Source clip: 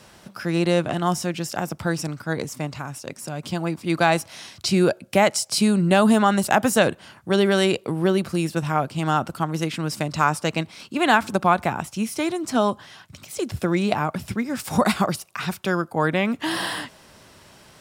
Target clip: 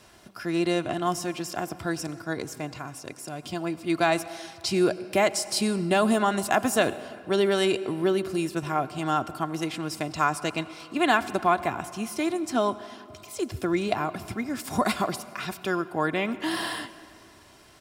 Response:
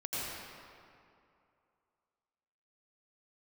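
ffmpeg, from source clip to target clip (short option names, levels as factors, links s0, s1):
-filter_complex "[0:a]aecho=1:1:2.9:0.44,asplit=2[s0][s1];[1:a]atrim=start_sample=2205[s2];[s1][s2]afir=irnorm=-1:irlink=0,volume=0.112[s3];[s0][s3]amix=inputs=2:normalize=0,volume=0.531"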